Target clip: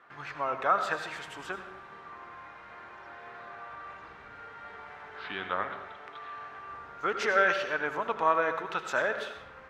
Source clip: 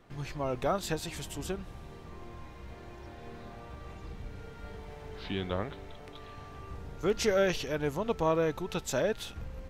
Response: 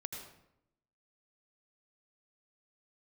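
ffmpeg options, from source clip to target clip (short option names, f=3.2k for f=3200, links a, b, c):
-filter_complex "[0:a]bandpass=f=1.4k:t=q:w=2.3:csg=0,asplit=2[a][b];[1:a]atrim=start_sample=2205[c];[b][c]afir=irnorm=-1:irlink=0,volume=3dB[d];[a][d]amix=inputs=2:normalize=0,volume=6dB"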